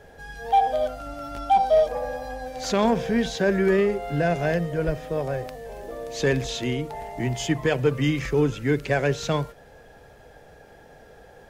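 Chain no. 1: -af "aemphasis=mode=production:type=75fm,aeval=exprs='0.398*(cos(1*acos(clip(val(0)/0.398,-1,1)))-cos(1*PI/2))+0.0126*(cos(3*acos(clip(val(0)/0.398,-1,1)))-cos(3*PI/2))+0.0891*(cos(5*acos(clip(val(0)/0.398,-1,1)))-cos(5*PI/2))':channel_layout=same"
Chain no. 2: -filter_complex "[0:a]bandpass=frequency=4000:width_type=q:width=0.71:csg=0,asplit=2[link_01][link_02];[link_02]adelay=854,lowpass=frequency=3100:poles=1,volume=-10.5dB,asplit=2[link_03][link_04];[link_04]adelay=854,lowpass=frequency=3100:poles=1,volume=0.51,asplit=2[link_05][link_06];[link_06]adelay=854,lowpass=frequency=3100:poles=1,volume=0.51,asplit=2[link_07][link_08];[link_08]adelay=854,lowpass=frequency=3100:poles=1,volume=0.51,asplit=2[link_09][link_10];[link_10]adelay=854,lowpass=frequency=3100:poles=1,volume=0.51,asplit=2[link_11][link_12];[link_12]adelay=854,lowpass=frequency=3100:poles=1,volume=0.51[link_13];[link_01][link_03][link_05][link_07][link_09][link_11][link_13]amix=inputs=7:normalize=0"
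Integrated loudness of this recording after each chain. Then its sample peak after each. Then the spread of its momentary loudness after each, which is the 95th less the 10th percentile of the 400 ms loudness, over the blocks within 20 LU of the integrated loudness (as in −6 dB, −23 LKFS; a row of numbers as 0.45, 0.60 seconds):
−20.5, −35.5 LKFS; −8.0, −18.0 dBFS; 10, 15 LU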